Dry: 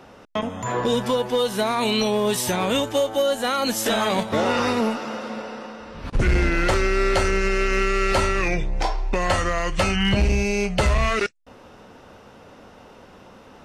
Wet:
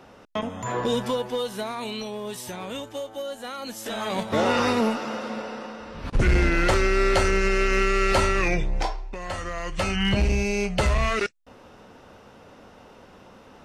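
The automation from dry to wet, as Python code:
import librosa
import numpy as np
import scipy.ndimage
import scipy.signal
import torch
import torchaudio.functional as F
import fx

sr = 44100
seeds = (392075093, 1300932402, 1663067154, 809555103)

y = fx.gain(x, sr, db=fx.line((0.99, -3.0), (2.07, -12.0), (3.81, -12.0), (4.4, -0.5), (8.77, -0.5), (9.13, -13.0), (10.04, -2.5)))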